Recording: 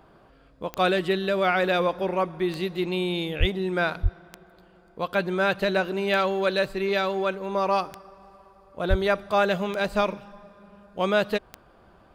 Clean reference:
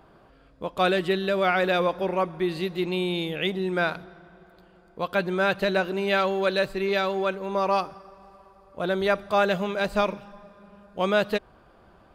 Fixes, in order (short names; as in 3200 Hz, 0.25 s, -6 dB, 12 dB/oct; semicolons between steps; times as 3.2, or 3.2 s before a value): de-click; de-plosive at 3.39/4.02/8.89